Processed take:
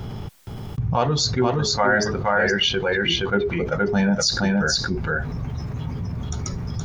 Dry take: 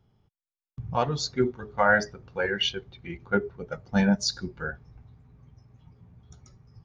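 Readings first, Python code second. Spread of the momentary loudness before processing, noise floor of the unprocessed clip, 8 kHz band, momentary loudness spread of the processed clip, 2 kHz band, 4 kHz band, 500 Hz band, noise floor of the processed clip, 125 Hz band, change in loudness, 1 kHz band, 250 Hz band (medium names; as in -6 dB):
17 LU, under -85 dBFS, no reading, 11 LU, +6.0 dB, +9.0 dB, +6.5 dB, -33 dBFS, +10.0 dB, +5.0 dB, +5.5 dB, +6.0 dB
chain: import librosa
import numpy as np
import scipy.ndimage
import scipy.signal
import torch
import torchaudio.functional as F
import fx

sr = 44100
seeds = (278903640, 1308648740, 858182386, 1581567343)

y = x + 10.0 ** (-4.0 / 20.0) * np.pad(x, (int(470 * sr / 1000.0), 0))[:len(x)]
y = fx.env_flatten(y, sr, amount_pct=70)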